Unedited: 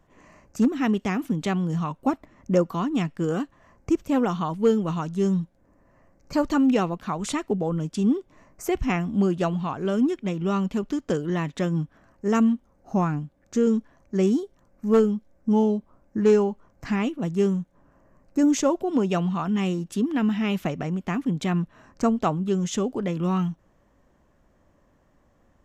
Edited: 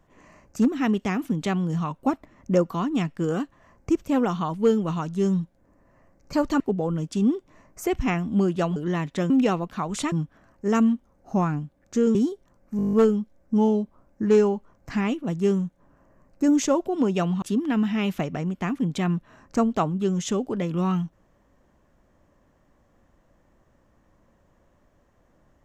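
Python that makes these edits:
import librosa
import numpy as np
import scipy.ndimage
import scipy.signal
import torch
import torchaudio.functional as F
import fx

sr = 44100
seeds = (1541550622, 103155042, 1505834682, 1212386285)

y = fx.edit(x, sr, fx.move(start_s=6.6, length_s=0.82, to_s=11.72),
    fx.cut(start_s=9.58, length_s=1.6),
    fx.cut(start_s=13.75, length_s=0.51),
    fx.stutter(start_s=14.88, slice_s=0.02, count=9),
    fx.cut(start_s=19.37, length_s=0.51), tone=tone)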